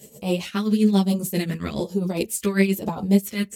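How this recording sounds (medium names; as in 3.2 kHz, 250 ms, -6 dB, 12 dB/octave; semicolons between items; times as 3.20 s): phasing stages 2, 1.1 Hz, lowest notch 770–1700 Hz; tremolo triangle 7.4 Hz, depth 80%; a shimmering, thickened sound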